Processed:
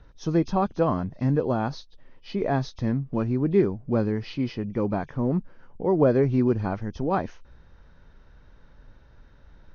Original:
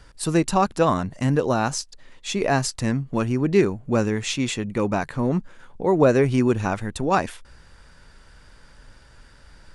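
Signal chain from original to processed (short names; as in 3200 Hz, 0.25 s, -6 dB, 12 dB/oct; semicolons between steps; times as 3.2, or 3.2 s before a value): nonlinear frequency compression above 2300 Hz 1.5:1; tilt shelf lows +6.5 dB, about 1300 Hz; gain -8 dB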